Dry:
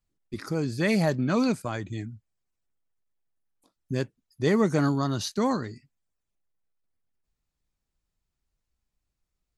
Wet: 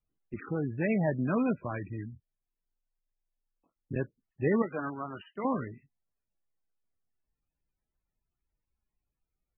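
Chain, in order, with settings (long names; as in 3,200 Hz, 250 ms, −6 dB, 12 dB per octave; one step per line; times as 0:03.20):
0:00.61–0:01.08: high-frequency loss of the air 120 metres
0:02.13–0:03.96: ring modulation 20 Hz
0:04.62–0:05.45: high-pass filter 840 Hz 6 dB per octave
level −3.5 dB
MP3 8 kbit/s 22,050 Hz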